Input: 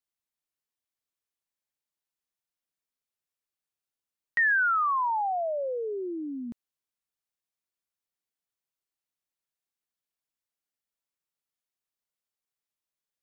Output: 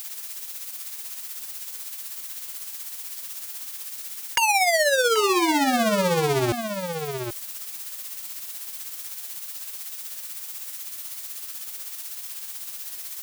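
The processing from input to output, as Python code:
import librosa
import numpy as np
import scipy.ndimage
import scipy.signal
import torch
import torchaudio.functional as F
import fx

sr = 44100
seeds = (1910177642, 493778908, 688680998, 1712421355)

y = fx.cycle_switch(x, sr, every=2, mode='inverted')
y = fx.high_shelf(y, sr, hz=3000.0, db=8.5)
y = fx.leveller(y, sr, passes=5)
y = fx.dmg_noise_colour(y, sr, seeds[0], colour='blue', level_db=-45.0)
y = y * (1.0 - 0.6 / 2.0 + 0.6 / 2.0 * np.cos(2.0 * np.pi * 16.0 * (np.arange(len(y)) / sr)))
y = y + 10.0 ** (-16.0 / 20.0) * np.pad(y, (int(783 * sr / 1000.0), 0))[:len(y)]
y = fx.env_flatten(y, sr, amount_pct=50)
y = y * librosa.db_to_amplitude(-5.0)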